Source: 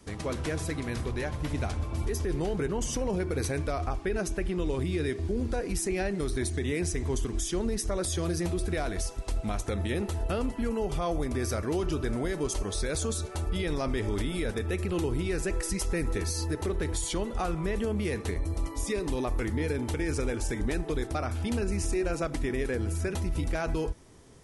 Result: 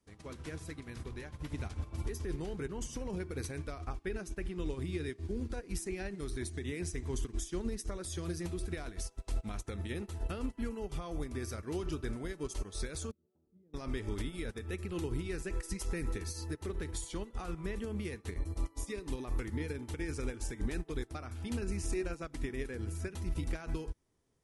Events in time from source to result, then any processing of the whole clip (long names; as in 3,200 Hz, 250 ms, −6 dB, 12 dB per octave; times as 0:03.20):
0:13.11–0:13.74: four-pole ladder band-pass 230 Hz, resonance 45%
whole clip: dynamic equaliser 640 Hz, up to −6 dB, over −45 dBFS, Q 1.6; expander for the loud parts 2.5 to 1, over −40 dBFS; level −2 dB